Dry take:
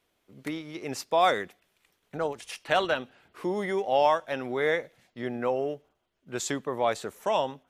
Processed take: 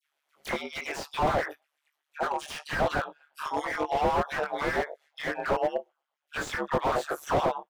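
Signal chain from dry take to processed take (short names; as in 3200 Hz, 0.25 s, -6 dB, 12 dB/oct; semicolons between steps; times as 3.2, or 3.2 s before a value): spectral noise reduction 18 dB; dynamic EQ 2700 Hz, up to -5 dB, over -47 dBFS, Q 1.7; in parallel at +3 dB: compressor 6:1, threshold -33 dBFS, peak gain reduction 14.5 dB; on the sum: transient shaper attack +8 dB, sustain 0 dB; vocal rider within 3 dB 2 s; LFO high-pass sine 8.2 Hz 660–1800 Hz; dispersion lows, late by 73 ms, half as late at 1500 Hz; ring modulator 73 Hz; doubler 20 ms -5 dB; slew limiter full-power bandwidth 40 Hz; gain +3 dB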